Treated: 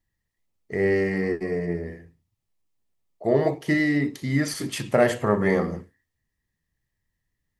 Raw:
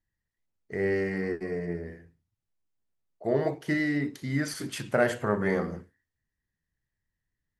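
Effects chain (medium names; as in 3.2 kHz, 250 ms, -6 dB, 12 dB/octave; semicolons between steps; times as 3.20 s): band-stop 1.5 kHz, Q 6; trim +5.5 dB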